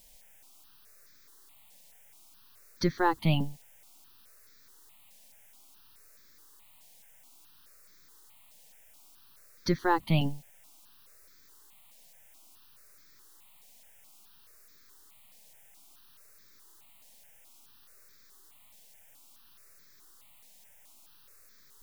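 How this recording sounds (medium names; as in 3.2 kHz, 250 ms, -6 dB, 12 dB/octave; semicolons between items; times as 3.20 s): a quantiser's noise floor 10-bit, dither triangular; notches that jump at a steady rate 4.7 Hz 350–2900 Hz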